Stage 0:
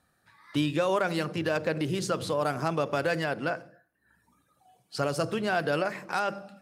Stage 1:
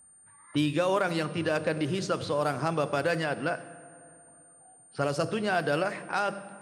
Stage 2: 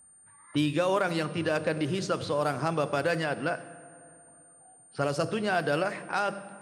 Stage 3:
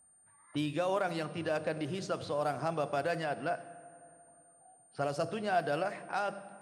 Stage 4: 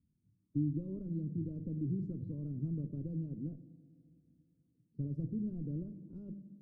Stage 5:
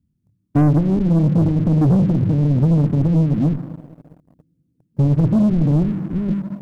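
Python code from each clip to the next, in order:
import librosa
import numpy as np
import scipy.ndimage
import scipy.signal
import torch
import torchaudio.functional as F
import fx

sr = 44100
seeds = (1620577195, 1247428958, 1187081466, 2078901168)

y1 = fx.rev_fdn(x, sr, rt60_s=3.1, lf_ratio=1.0, hf_ratio=0.9, size_ms=58.0, drr_db=14.5)
y1 = fx.env_lowpass(y1, sr, base_hz=1400.0, full_db=-22.5)
y1 = y1 + 10.0 ** (-54.0 / 20.0) * np.sin(2.0 * np.pi * 9000.0 * np.arange(len(y1)) / sr)
y2 = y1
y3 = fx.peak_eq(y2, sr, hz=700.0, db=7.5, octaves=0.4)
y3 = y3 * librosa.db_to_amplitude(-7.5)
y4 = fx.diode_clip(y3, sr, knee_db=-24.0)
y4 = scipy.signal.sosfilt(scipy.signal.cheby2(4, 50, 700.0, 'lowpass', fs=sr, output='sos'), y4)
y4 = y4 * librosa.db_to_amplitude(5.5)
y5 = fx.low_shelf(y4, sr, hz=480.0, db=8.5)
y5 = fx.leveller(y5, sr, passes=3)
y5 = y5 * librosa.db_to_amplitude(7.5)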